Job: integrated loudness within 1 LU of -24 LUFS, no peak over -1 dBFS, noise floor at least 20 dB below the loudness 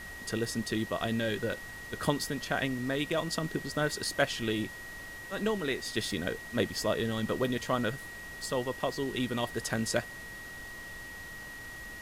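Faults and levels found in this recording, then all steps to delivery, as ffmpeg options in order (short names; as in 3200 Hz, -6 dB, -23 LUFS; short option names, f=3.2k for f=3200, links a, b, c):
steady tone 1900 Hz; tone level -43 dBFS; noise floor -44 dBFS; noise floor target -54 dBFS; loudness -33.5 LUFS; peak -13.0 dBFS; loudness target -24.0 LUFS
-> -af "bandreject=f=1.9k:w=30"
-af "afftdn=nr=10:nf=-44"
-af "volume=9.5dB"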